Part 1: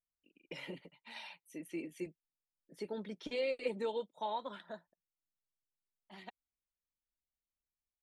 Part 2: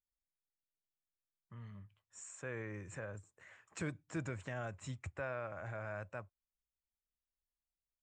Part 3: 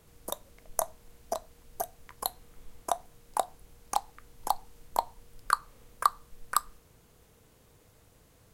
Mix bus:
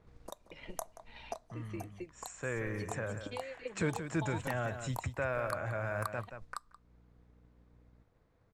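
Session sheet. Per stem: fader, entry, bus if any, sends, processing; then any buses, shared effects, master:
−6.0 dB, 0.00 s, bus A, no send, no echo send, mains hum 60 Hz, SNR 18 dB
+1.5 dB, 0.00 s, no bus, no send, echo send −9 dB, no processing
0:01.06 −4 dB → 0:01.74 −14 dB, 0.00 s, bus A, no send, echo send −23 dB, parametric band 2,900 Hz −7 dB 0.41 octaves
bus A: 0.0 dB, transient designer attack +5 dB, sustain −1 dB; downward compressor 2 to 1, threshold −50 dBFS, peak gain reduction 15.5 dB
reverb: not used
echo: single-tap delay 179 ms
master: low-pass that shuts in the quiet parts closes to 2,400 Hz, open at −38.5 dBFS; automatic gain control gain up to 5 dB

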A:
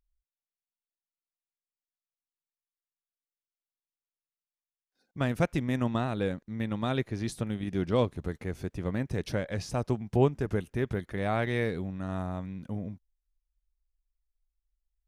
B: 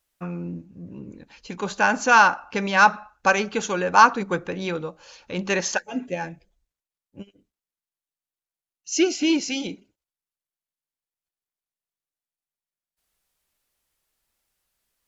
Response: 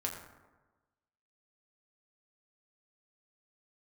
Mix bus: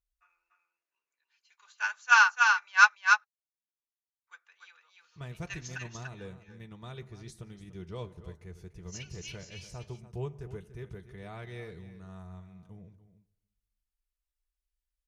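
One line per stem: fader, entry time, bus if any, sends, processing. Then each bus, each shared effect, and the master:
−13.0 dB, 0.00 s, send −12.5 dB, echo send −12 dB, graphic EQ with 15 bands 100 Hz −7 dB, 250 Hz −12 dB, 630 Hz −6 dB, 1,600 Hz −3 dB, 6,300 Hz +5 dB
+3.0 dB, 0.00 s, muted 0:02.95–0:04.27, no send, echo send −3.5 dB, high-pass filter 1,200 Hz 24 dB per octave; expander for the loud parts 2.5 to 1, over −30 dBFS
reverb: on, RT60 1.2 s, pre-delay 5 ms
echo: single-tap delay 291 ms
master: low-shelf EQ 280 Hz +7 dB; notch comb filter 270 Hz

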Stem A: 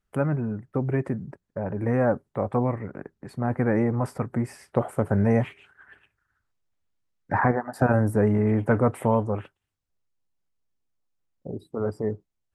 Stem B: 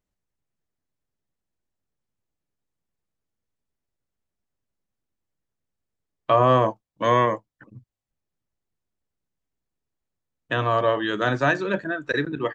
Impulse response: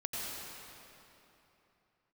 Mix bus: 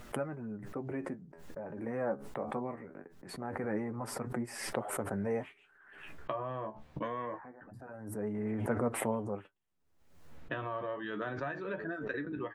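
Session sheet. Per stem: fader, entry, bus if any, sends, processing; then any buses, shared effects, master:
−7.5 dB, 0.00 s, no send, high-pass filter 190 Hz 12 dB per octave; automatic ducking −18 dB, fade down 0.30 s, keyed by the second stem
−3.0 dB, 0.00 s, no send, low-pass filter 2,300 Hz 12 dB per octave; brickwall limiter −11.5 dBFS, peak gain reduction 4.5 dB; downward compressor 10 to 1, threshold −27 dBFS, peak gain reduction 11 dB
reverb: not used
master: flanger 0.23 Hz, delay 8.1 ms, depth 6.4 ms, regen +38%; background raised ahead of every attack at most 58 dB per second

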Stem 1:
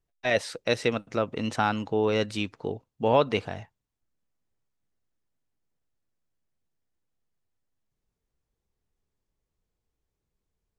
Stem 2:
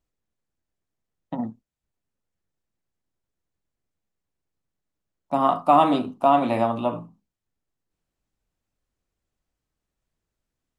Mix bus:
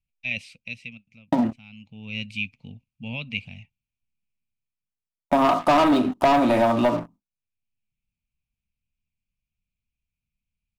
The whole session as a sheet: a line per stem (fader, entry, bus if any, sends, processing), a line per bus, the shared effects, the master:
−2.5 dB, 0.00 s, no send, drawn EQ curve 240 Hz 0 dB, 360 Hz −29 dB, 540 Hz −19 dB, 840 Hz −21 dB, 1,700 Hz −23 dB, 2,400 Hz +12 dB, 3,600 Hz −4 dB, 6,300 Hz −8 dB; automatic ducking −18 dB, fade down 0.95 s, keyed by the second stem
+1.5 dB, 0.00 s, no send, noise gate with hold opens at −43 dBFS; comb filter 3.2 ms, depth 40%; leveller curve on the samples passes 3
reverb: not used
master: downward compressor 3 to 1, threshold −19 dBFS, peak gain reduction 9.5 dB

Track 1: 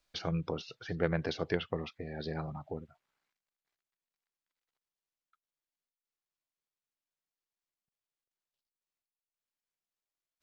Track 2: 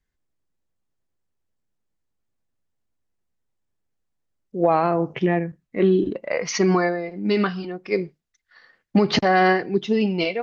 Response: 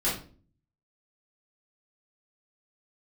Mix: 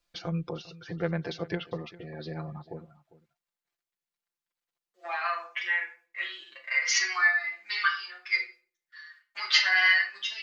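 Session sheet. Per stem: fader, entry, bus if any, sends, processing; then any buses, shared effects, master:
−2.5 dB, 0.00 s, no send, echo send −19 dB, no processing
+0.5 dB, 0.40 s, send −8.5 dB, no echo send, noise gate with hold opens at −45 dBFS; high-pass filter 1,400 Hz 24 dB per octave; barber-pole flanger 7.1 ms −0.81 Hz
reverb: on, RT60 0.40 s, pre-delay 3 ms
echo: single-tap delay 400 ms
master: comb filter 5.8 ms, depth 81%

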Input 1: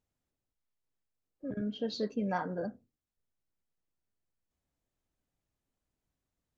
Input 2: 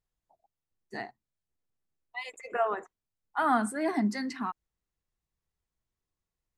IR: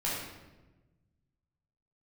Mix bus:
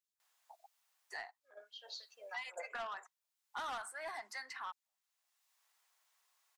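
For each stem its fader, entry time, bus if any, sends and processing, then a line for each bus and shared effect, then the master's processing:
0.0 dB, 0.00 s, no send, high-pass filter 570 Hz 24 dB per octave; parametric band 2,000 Hz −13 dB 2 octaves; auto-filter high-pass sine 3 Hz 740–3,800 Hz
−5.0 dB, 0.20 s, no send, high-pass filter 770 Hz 24 dB per octave; soft clipping −30 dBFS, distortion −9 dB; multiband upward and downward compressor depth 70%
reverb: not used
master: no processing

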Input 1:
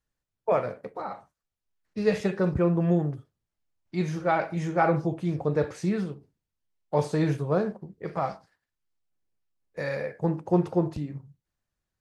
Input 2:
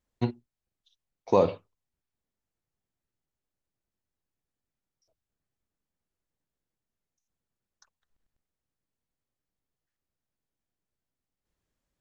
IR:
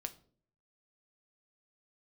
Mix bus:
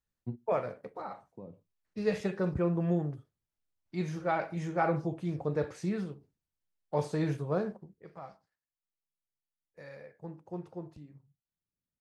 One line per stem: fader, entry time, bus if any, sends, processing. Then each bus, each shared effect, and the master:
0:07.76 −6 dB → 0:08.09 −17.5 dB, 0.00 s, no send, no processing
−4.0 dB, 0.05 s, no send, resonant band-pass 160 Hz, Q 1.4; automatic ducking −13 dB, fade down 1.50 s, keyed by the first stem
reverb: not used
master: no processing

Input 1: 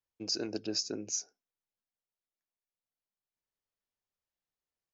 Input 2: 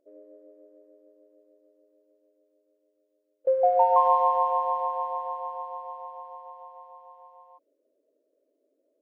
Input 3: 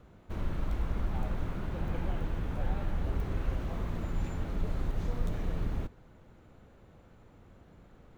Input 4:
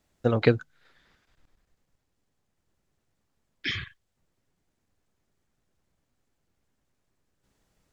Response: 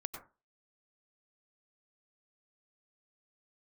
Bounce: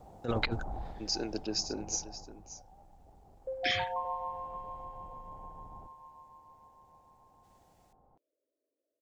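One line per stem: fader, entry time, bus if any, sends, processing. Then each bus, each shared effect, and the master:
0.0 dB, 0.80 s, no send, echo send −14 dB, no processing
−15.5 dB, 0.00 s, no send, echo send −6.5 dB, no processing
0:00.80 −0.5 dB → 0:01.03 −10 dB → 0:01.99 −10 dB → 0:02.63 −21.5 dB → 0:04.13 −21.5 dB → 0:04.67 −13.5 dB, 0.00 s, no send, no echo send, downward compressor, threshold −31 dBFS, peak gain reduction 8 dB; soft clipping −32.5 dBFS, distortion −14 dB; low-pass with resonance 790 Hz, resonance Q 8.7
−4.0 dB, 0.00 s, no send, no echo send, spectral tilt +1.5 dB per octave; compressor whose output falls as the input rises −27 dBFS, ratio −0.5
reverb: not used
echo: single-tap delay 577 ms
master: no processing

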